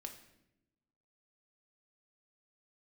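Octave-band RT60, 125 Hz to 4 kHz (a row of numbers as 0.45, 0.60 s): 1.3, 1.4, 1.0, 0.75, 0.80, 0.65 s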